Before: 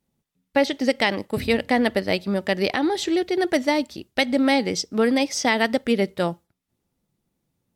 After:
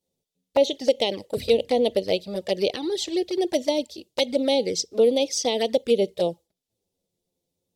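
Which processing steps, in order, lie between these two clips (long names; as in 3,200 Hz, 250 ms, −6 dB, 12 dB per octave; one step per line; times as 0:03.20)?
drawn EQ curve 270 Hz 0 dB, 490 Hz +13 dB, 1,400 Hz −9 dB, 3,600 Hz +10 dB, 6,900 Hz +10 dB, 12,000 Hz +7 dB
flanger swept by the level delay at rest 11.4 ms, full sweep at −10.5 dBFS
level −6.5 dB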